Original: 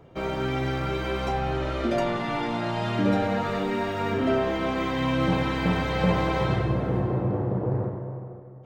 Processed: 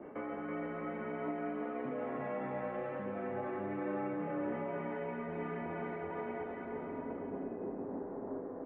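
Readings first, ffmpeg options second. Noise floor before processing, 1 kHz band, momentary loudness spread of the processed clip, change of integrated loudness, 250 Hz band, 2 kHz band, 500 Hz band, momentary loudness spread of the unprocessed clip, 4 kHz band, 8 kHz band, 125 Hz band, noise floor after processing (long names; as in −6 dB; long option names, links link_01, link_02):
−42 dBFS, −13.5 dB, 4 LU, −13.5 dB, −12.5 dB, −14.5 dB, −11.0 dB, 4 LU, below −30 dB, can't be measured, −22.0 dB, −44 dBFS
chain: -filter_complex "[0:a]adynamicequalizer=threshold=0.00708:dfrequency=1500:dqfactor=1.1:tfrequency=1500:tqfactor=1.1:attack=5:release=100:ratio=0.375:range=2.5:mode=cutabove:tftype=bell,areverse,acompressor=threshold=-36dB:ratio=6,areverse,alimiter=level_in=15.5dB:limit=-24dB:level=0:latency=1:release=425,volume=-15.5dB,acompressor=mode=upward:threshold=-58dB:ratio=2.5,asplit=2[link_01][link_02];[link_02]aecho=0:1:330|594|805.2|974.2|1109:0.631|0.398|0.251|0.158|0.1[link_03];[link_01][link_03]amix=inputs=2:normalize=0,highpass=frequency=320:width_type=q:width=0.5412,highpass=frequency=320:width_type=q:width=1.307,lowpass=frequency=2200:width_type=q:width=0.5176,lowpass=frequency=2200:width_type=q:width=0.7071,lowpass=frequency=2200:width_type=q:width=1.932,afreqshift=-94,volume=10dB"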